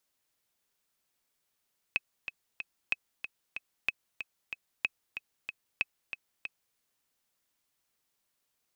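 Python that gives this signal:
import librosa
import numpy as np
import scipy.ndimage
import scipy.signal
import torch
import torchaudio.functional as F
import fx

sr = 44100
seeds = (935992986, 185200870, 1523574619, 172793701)

y = fx.click_track(sr, bpm=187, beats=3, bars=5, hz=2560.0, accent_db=9.5, level_db=-14.0)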